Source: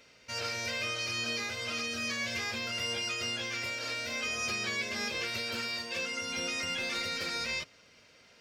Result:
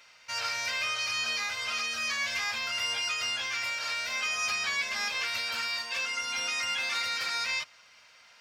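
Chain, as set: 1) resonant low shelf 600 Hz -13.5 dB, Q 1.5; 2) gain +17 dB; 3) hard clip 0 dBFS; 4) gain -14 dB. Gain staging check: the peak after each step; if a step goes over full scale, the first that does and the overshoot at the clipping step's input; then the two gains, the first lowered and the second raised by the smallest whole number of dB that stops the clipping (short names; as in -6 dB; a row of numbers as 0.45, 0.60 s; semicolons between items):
-22.0, -5.0, -5.0, -19.0 dBFS; no overload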